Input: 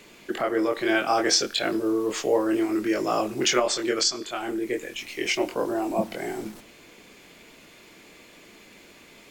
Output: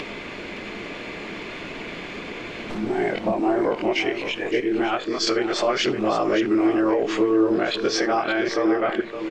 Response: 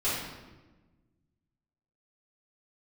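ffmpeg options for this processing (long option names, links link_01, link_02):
-filter_complex "[0:a]areverse,lowpass=3000,alimiter=limit=-20.5dB:level=0:latency=1:release=184,acompressor=mode=upward:threshold=-32dB:ratio=2.5,aecho=1:1:566:0.335,asplit=2[link_01][link_02];[1:a]atrim=start_sample=2205,atrim=end_sample=3969[link_03];[link_02][link_03]afir=irnorm=-1:irlink=0,volume=-21.5dB[link_04];[link_01][link_04]amix=inputs=2:normalize=0,volume=7.5dB"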